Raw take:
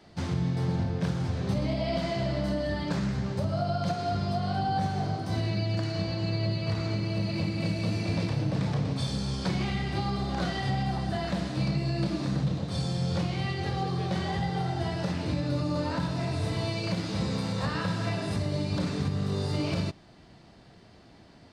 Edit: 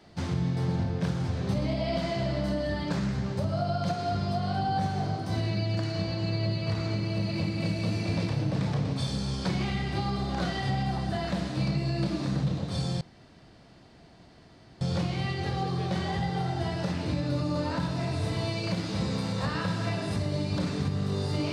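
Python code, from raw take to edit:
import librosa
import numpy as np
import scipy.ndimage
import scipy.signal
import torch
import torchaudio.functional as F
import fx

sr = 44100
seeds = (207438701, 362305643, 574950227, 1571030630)

y = fx.edit(x, sr, fx.insert_room_tone(at_s=13.01, length_s=1.8), tone=tone)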